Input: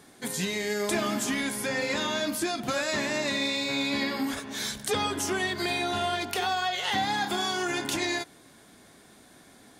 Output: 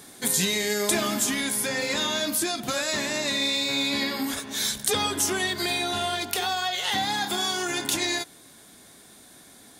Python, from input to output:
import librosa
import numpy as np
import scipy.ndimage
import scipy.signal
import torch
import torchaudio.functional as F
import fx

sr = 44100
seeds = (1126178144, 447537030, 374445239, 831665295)

y = fx.peak_eq(x, sr, hz=3700.0, db=3.5, octaves=0.22)
y = fx.rider(y, sr, range_db=10, speed_s=2.0)
y = fx.high_shelf(y, sr, hz=5800.0, db=11.0)